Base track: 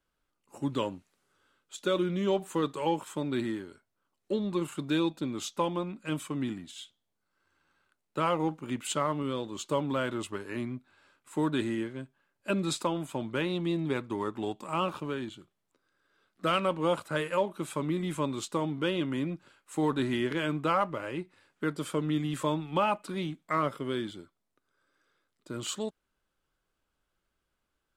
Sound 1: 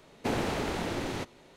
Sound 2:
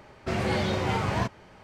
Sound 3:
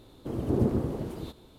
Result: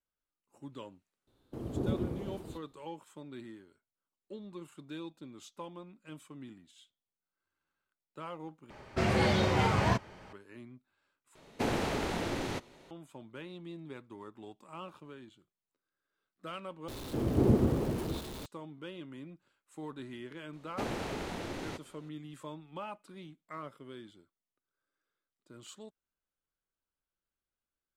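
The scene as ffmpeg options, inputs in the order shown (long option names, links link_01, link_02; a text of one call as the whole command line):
ffmpeg -i bed.wav -i cue0.wav -i cue1.wav -i cue2.wav -filter_complex "[3:a]asplit=2[link_01][link_02];[1:a]asplit=2[link_03][link_04];[0:a]volume=-15dB[link_05];[link_01]agate=range=-10dB:threshold=-41dB:ratio=16:release=100:detection=peak[link_06];[link_02]aeval=exprs='val(0)+0.5*0.0119*sgn(val(0))':channel_layout=same[link_07];[link_05]asplit=4[link_08][link_09][link_10][link_11];[link_08]atrim=end=8.704[link_12];[2:a]atrim=end=1.63,asetpts=PTS-STARTPTS,volume=-0.5dB[link_13];[link_09]atrim=start=10.326:end=11.354[link_14];[link_03]atrim=end=1.56,asetpts=PTS-STARTPTS,volume=-1.5dB[link_15];[link_10]atrim=start=12.906:end=16.884[link_16];[link_07]atrim=end=1.58,asetpts=PTS-STARTPTS,volume=-0.5dB[link_17];[link_11]atrim=start=18.456[link_18];[link_06]atrim=end=1.58,asetpts=PTS-STARTPTS,volume=-7.5dB,afade=type=in:duration=0.004:curve=hsin,afade=type=out:start_time=1.576:duration=0.004:curve=hsin,adelay=1270[link_19];[link_04]atrim=end=1.56,asetpts=PTS-STARTPTS,volume=-6.5dB,afade=type=in:duration=0.004:curve=hsin,afade=type=out:start_time=1.556:duration=0.004:curve=hsin,adelay=20530[link_20];[link_12][link_13]acrossfade=duration=0.004:curve1=hsin:curve2=hsin[link_21];[link_21][link_14]acrossfade=duration=0.004:curve1=hsin:curve2=hsin[link_22];[link_22][link_15]acrossfade=duration=0.004:curve1=hsin:curve2=hsin[link_23];[link_23][link_16]acrossfade=duration=0.004:curve1=hsin:curve2=hsin[link_24];[link_24][link_17]acrossfade=duration=0.004:curve1=hsin:curve2=hsin[link_25];[link_25][link_18]acrossfade=duration=0.004:curve1=hsin:curve2=hsin[link_26];[link_26][link_19][link_20]amix=inputs=3:normalize=0" out.wav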